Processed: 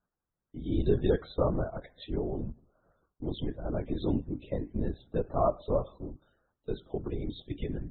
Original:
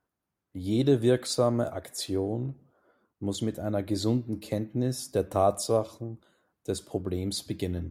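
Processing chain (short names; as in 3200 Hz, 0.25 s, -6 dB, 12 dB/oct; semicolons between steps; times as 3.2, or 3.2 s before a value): LPC vocoder at 8 kHz whisper; loudest bins only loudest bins 64; gain -3 dB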